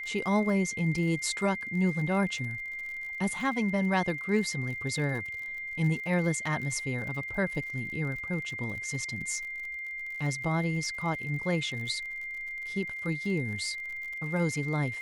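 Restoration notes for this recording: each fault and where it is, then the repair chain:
crackle 55 per s -38 dBFS
whine 2.1 kHz -35 dBFS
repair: de-click; band-stop 2.1 kHz, Q 30

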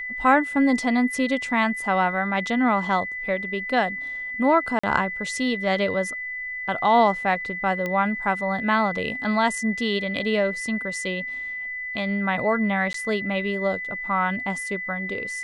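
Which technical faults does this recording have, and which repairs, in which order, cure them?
whine 2 kHz -29 dBFS
4.79–4.83 s: dropout 45 ms
7.86 s: pop -15 dBFS
12.93–12.94 s: dropout 13 ms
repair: de-click; band-stop 2 kHz, Q 30; interpolate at 4.79 s, 45 ms; interpolate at 12.93 s, 13 ms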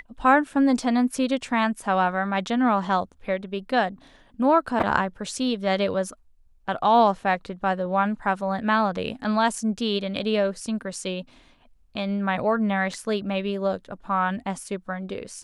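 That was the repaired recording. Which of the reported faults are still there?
nothing left

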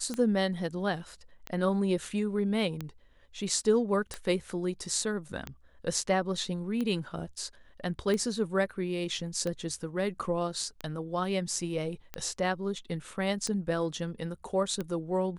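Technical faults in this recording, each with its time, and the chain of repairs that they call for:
tick 45 rpm -20 dBFS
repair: de-click

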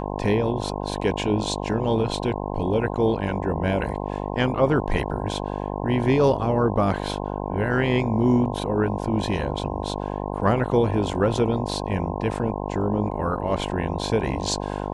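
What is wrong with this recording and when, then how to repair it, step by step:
buzz 50 Hz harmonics 21 -29 dBFS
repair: de-hum 50 Hz, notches 21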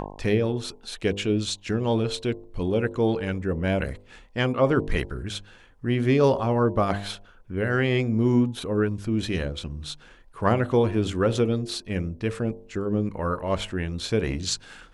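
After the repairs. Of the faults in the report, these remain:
nothing left

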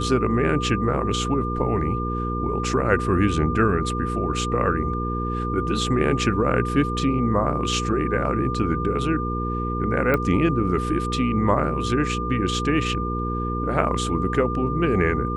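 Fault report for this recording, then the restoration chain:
hum 60 Hz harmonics 8 -27 dBFS
whine 1.2 kHz -28 dBFS
10.14 s: pop -10 dBFS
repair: de-click; band-stop 1.2 kHz, Q 30; de-hum 60 Hz, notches 8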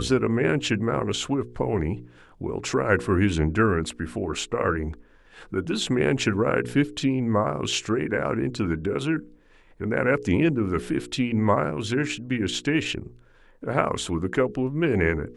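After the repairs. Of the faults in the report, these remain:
nothing left

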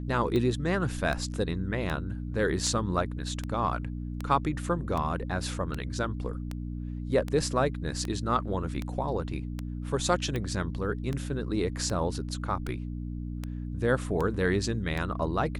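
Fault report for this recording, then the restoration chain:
hum 60 Hz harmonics 5 -35 dBFS
tick 78 rpm -19 dBFS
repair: de-click; de-hum 60 Hz, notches 5

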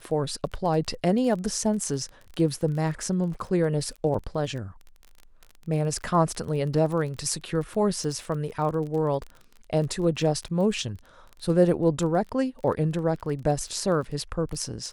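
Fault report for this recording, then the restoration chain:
crackle 22 per s -33 dBFS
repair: de-click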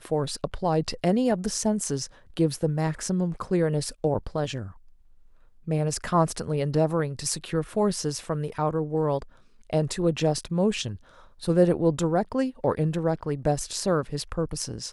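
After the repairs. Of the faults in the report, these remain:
nothing left

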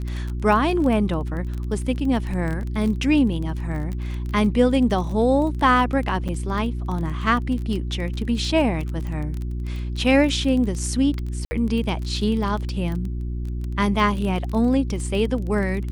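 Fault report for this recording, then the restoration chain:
crackle 21 per s -27 dBFS
hum 60 Hz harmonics 6 -27 dBFS
6.28–6.29 s: dropout 7.1 ms
11.45–11.51 s: dropout 60 ms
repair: de-click; de-hum 60 Hz, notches 6; interpolate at 6.28 s, 7.1 ms; interpolate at 11.45 s, 60 ms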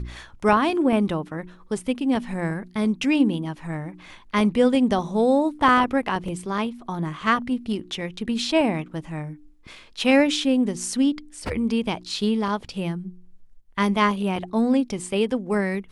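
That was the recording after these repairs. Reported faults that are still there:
nothing left

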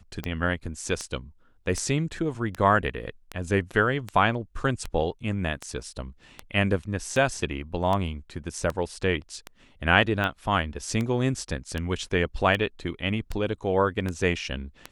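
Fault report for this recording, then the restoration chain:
tick 78 rpm -16 dBFS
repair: de-click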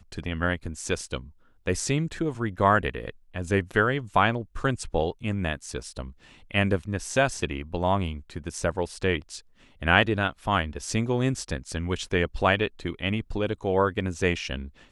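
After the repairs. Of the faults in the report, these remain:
nothing left

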